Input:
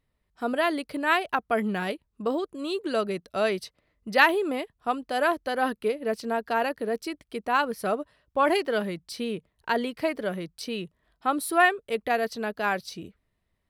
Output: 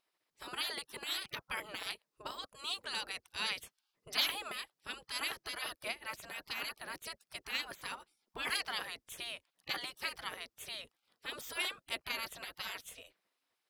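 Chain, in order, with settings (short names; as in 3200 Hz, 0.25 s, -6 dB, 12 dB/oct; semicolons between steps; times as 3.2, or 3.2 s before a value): bell 5100 Hz +5 dB 0.39 oct; spectral gate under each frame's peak -20 dB weak; gain +1.5 dB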